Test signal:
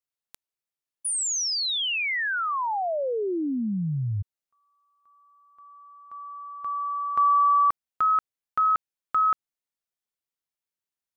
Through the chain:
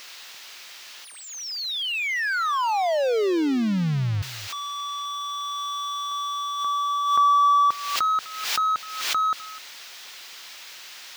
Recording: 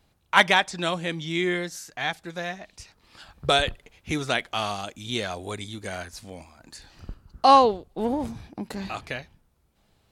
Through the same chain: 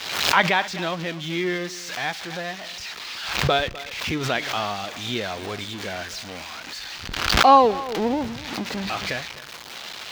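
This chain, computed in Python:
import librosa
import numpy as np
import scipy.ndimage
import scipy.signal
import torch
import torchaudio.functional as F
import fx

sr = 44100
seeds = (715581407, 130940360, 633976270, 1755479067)

y = x + 0.5 * 10.0 ** (-15.0 / 20.0) * np.diff(np.sign(x), prepend=np.sign(x[:1]))
y = fx.low_shelf(y, sr, hz=71.0, db=-9.0)
y = fx.rider(y, sr, range_db=5, speed_s=2.0)
y = fx.air_absorb(y, sr, metres=230.0)
y = y + 10.0 ** (-18.0 / 20.0) * np.pad(y, (int(253 * sr / 1000.0), 0))[:len(y)]
y = fx.pre_swell(y, sr, db_per_s=53.0)
y = F.gain(torch.from_numpy(y), 1.5).numpy()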